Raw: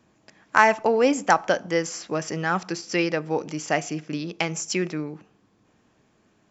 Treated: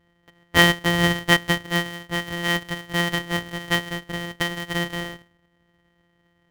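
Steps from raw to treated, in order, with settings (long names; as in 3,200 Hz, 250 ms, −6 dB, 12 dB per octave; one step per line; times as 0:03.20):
samples sorted by size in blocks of 256 samples
hollow resonant body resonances 1,900/3,100 Hz, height 17 dB, ringing for 40 ms
one half of a high-frequency compander decoder only
level −2 dB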